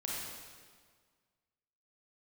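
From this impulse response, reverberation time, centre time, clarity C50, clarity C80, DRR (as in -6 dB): 1.7 s, 0.11 s, -2.5 dB, 0.5 dB, -5.0 dB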